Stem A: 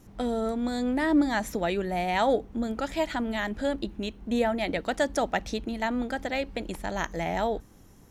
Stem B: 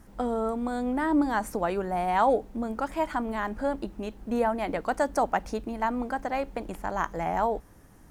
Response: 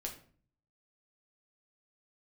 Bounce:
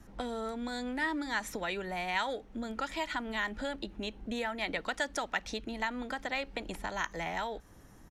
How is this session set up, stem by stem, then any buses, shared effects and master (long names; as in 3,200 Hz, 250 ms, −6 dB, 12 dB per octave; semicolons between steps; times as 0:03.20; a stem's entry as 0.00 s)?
−1.5 dB, 0.00 s, no send, inverse Chebyshev high-pass filter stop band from 370 Hz, stop band 60 dB; high-shelf EQ 11,000 Hz −10.5 dB
−1.5 dB, 2.7 ms, no send, gate on every frequency bin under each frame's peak −30 dB strong; downward compressor 4 to 1, threshold −34 dBFS, peak gain reduction 13.5 dB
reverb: not used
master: no processing